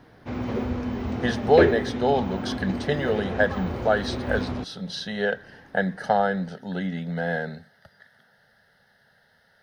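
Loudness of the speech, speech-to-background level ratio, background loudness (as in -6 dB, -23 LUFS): -26.5 LUFS, 2.0 dB, -28.5 LUFS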